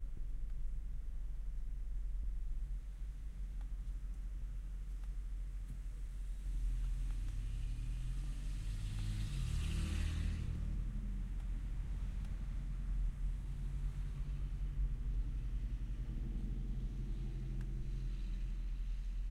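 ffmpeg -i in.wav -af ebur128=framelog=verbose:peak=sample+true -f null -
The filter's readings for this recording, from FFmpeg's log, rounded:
Integrated loudness:
  I:         -44.8 LUFS
  Threshold: -54.8 LUFS
Loudness range:
  LRA:         5.4 LU
  Threshold: -64.6 LUFS
  LRA low:   -47.7 LUFS
  LRA high:  -42.3 LUFS
Sample peak:
  Peak:      -27.6 dBFS
True peak:
  Peak:      -27.6 dBFS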